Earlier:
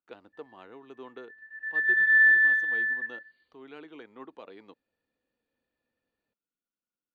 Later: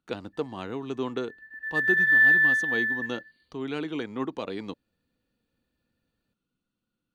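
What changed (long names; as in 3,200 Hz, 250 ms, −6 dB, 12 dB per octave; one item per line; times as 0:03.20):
speech +11.0 dB
master: add bass and treble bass +14 dB, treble +13 dB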